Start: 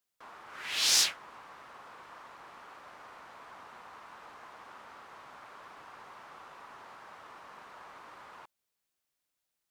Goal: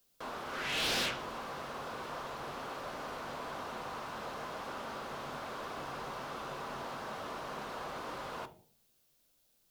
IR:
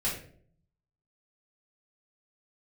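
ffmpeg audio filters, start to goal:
-filter_complex "[0:a]asplit=2[a][b];[b]tiltshelf=f=970:g=3[c];[1:a]atrim=start_sample=2205,asetrate=57330,aresample=44100[d];[c][d]afir=irnorm=-1:irlink=0,volume=-11.5dB[e];[a][e]amix=inputs=2:normalize=0,acrossover=split=2700[f][g];[g]acompressor=threshold=-56dB:ratio=4:attack=1:release=60[h];[f][h]amix=inputs=2:normalize=0,asoftclip=type=tanh:threshold=-37.5dB,equalizer=f=1k:t=o:w=1:g=-6,equalizer=f=2k:t=o:w=1:g=-8,equalizer=f=8k:t=o:w=1:g=-4,volume=13.5dB"

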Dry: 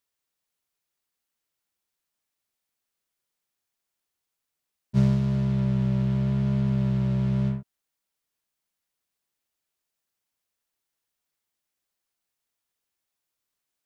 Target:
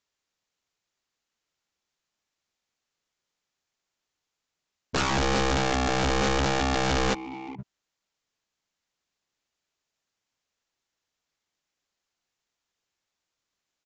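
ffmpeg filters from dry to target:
-filter_complex "[0:a]aeval=exprs='(mod(14.1*val(0)+1,2)-1)/14.1':c=same,asplit=3[a][b][c];[a]afade=t=out:st=7.13:d=0.02[d];[b]asplit=3[e][f][g];[e]bandpass=f=300:t=q:w=8,volume=0dB[h];[f]bandpass=f=870:t=q:w=8,volume=-6dB[i];[g]bandpass=f=2.24k:t=q:w=8,volume=-9dB[j];[h][i][j]amix=inputs=3:normalize=0,afade=t=in:st=7.13:d=0.02,afade=t=out:st=7.58:d=0.02[k];[c]afade=t=in:st=7.58:d=0.02[l];[d][k][l]amix=inputs=3:normalize=0,aresample=16000,aresample=44100,volume=3.5dB"

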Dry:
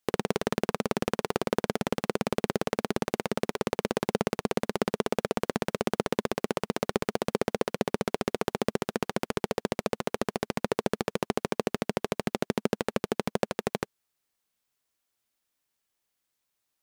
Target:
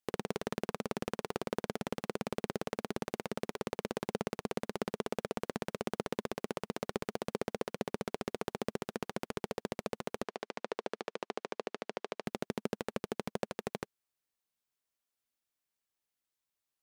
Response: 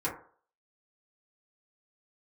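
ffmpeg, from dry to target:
-filter_complex "[0:a]asettb=1/sr,asplit=3[a][b][c];[a]atrim=end=10.234[d];[b]atrim=start=10.23:end=12.26,asetpts=PTS-STARTPTS,afade=t=in:d=0.004:c=qsin,afade=t=out:st=2.026:d=0.004:c=qsin,highpass=360,lowpass=5.7k[e];[c]atrim=start=12.256[f];[d][e]acrossfade=d=0.004:c1=hsin:c2=qsin[g];[g][f]acrossfade=d=0.004:c1=qsin:c2=hsin,volume=-8.5dB"

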